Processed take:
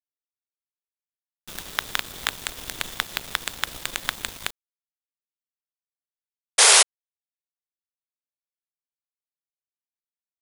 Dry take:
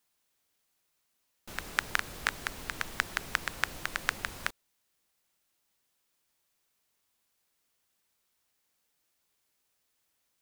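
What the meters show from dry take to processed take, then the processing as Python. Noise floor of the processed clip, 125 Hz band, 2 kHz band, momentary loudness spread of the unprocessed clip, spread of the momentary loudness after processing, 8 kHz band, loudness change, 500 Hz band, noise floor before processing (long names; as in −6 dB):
below −85 dBFS, +1.5 dB, +5.5 dB, 7 LU, 20 LU, +22.5 dB, +13.0 dB, +13.0 dB, −78 dBFS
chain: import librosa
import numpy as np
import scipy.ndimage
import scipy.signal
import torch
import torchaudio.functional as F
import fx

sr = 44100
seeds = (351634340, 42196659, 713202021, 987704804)

y = fx.peak_eq(x, sr, hz=3500.0, db=12.5, octaves=0.28)
y = fx.quant_companded(y, sr, bits=2)
y = fx.spec_paint(y, sr, seeds[0], shape='noise', start_s=6.58, length_s=0.25, low_hz=380.0, high_hz=11000.0, level_db=-9.0)
y = F.gain(torch.from_numpy(y), -4.5).numpy()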